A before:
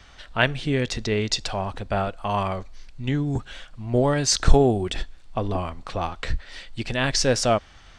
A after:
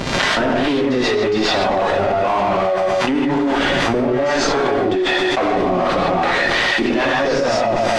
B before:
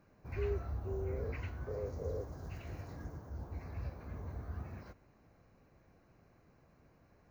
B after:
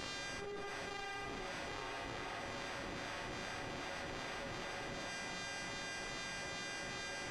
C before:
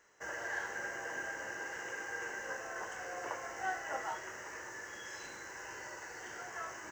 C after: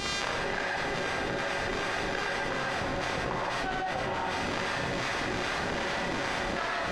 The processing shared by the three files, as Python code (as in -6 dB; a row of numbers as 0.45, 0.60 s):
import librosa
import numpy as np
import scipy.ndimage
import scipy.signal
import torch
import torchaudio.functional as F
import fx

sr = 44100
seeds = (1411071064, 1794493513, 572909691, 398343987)

y = scipy.signal.sosfilt(scipy.signal.butter(8, 250.0, 'highpass', fs=sr, output='sos'), x)
y = fx.low_shelf(y, sr, hz=360.0, db=-2.5)
y = fx.rider(y, sr, range_db=4, speed_s=0.5)
y = fx.dmg_buzz(y, sr, base_hz=400.0, harmonics=25, level_db=-49.0, tilt_db=0, odd_only=False)
y = fx.fuzz(y, sr, gain_db=37.0, gate_db=-37.0)
y = fx.harmonic_tremolo(y, sr, hz=2.5, depth_pct=70, crossover_hz=530.0)
y = fx.dmg_crackle(y, sr, seeds[0], per_s=300.0, level_db=-38.0)
y = fx.spacing_loss(y, sr, db_at_10k=32)
y = fx.echo_feedback(y, sr, ms=127, feedback_pct=36, wet_db=-17.0)
y = fx.rev_gated(y, sr, seeds[1], gate_ms=190, shape='rising', drr_db=-7.0)
y = fx.env_flatten(y, sr, amount_pct=100)
y = y * 10.0 ** (-11.0 / 20.0)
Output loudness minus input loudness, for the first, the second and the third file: +7.5, -1.0, +11.0 LU